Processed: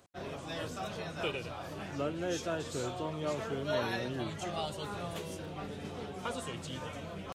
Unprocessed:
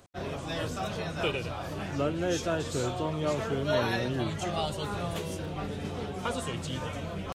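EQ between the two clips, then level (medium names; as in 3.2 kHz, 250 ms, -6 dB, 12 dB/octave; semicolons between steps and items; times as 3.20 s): bass shelf 90 Hz -9 dB; -5.0 dB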